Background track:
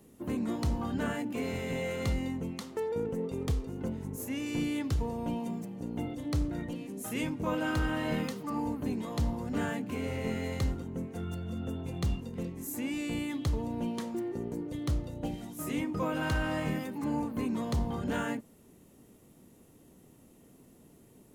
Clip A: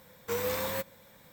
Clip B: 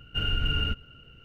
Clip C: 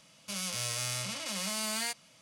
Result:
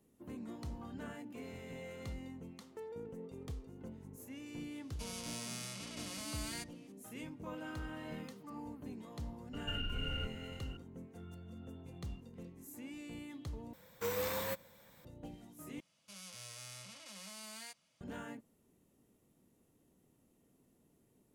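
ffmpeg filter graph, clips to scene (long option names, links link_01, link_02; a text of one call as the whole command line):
ffmpeg -i bed.wav -i cue0.wav -i cue1.wav -i cue2.wav -filter_complex "[3:a]asplit=2[link_01][link_02];[0:a]volume=-13.5dB[link_03];[2:a]acompressor=threshold=-35dB:ratio=6:attack=3.2:release=140:knee=1:detection=peak[link_04];[link_03]asplit=3[link_05][link_06][link_07];[link_05]atrim=end=13.734[link_08];[1:a]atrim=end=1.32,asetpts=PTS-STARTPTS,volume=-5dB[link_09];[link_06]atrim=start=15.046:end=15.804[link_10];[link_02]atrim=end=2.21,asetpts=PTS-STARTPTS,volume=-15.5dB[link_11];[link_07]atrim=start=18.006[link_12];[link_01]atrim=end=2.21,asetpts=PTS-STARTPTS,volume=-10.5dB,afade=type=in:duration=0.004:curve=hsin,afade=type=out:start_time=2.206:duration=0.004:curve=hsin,adelay=4710[link_13];[link_04]atrim=end=1.24,asetpts=PTS-STARTPTS,volume=-0.5dB,afade=type=in:duration=0.004:curve=hsin,afade=type=out:start_time=1.236:duration=0.004:curve=hsin,adelay=9530[link_14];[link_08][link_09]acrossfade=duration=0.004:curve1=hsin:curve2=hsin[link_15];[link_15][link_10]acrossfade=duration=0.004:curve1=hsin:curve2=hsin[link_16];[link_16][link_11]acrossfade=duration=0.004:curve1=hsin:curve2=hsin[link_17];[link_17][link_12]acrossfade=duration=0.004:curve1=hsin:curve2=hsin[link_18];[link_18][link_13][link_14]amix=inputs=3:normalize=0" out.wav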